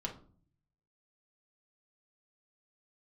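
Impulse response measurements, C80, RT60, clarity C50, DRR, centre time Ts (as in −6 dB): 16.5 dB, 0.45 s, 10.5 dB, −1.0 dB, 15 ms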